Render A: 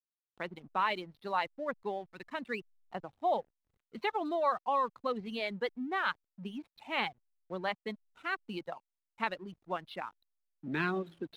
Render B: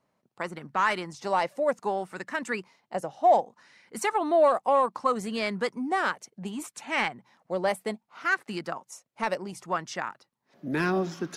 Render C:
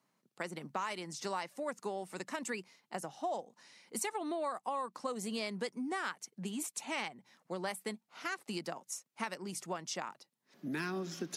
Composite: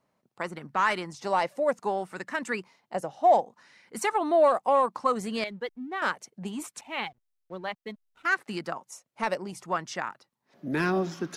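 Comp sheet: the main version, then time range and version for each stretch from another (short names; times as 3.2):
B
5.44–6.02 from A
6.81–8.25 from A
not used: C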